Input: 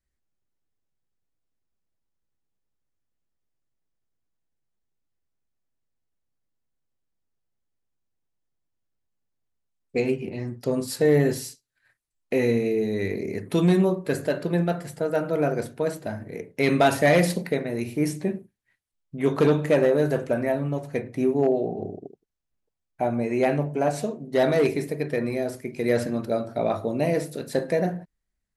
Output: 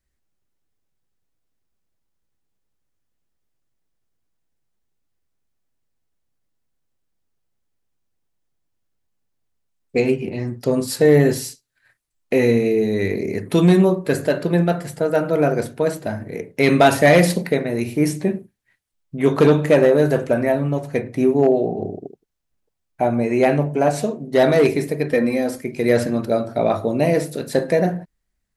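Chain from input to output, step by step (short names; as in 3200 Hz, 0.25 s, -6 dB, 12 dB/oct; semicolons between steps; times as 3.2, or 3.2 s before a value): 25.11–25.64 comb 3.8 ms, depth 64%; gain +6 dB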